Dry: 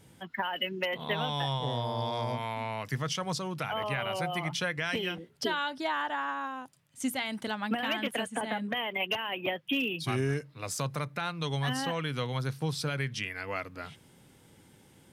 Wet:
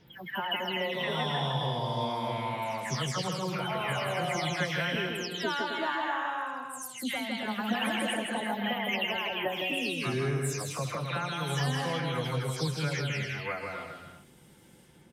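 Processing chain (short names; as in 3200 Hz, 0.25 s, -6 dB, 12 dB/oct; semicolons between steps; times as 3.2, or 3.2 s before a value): spectral delay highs early, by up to 0.268 s; bouncing-ball echo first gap 0.16 s, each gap 0.65×, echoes 5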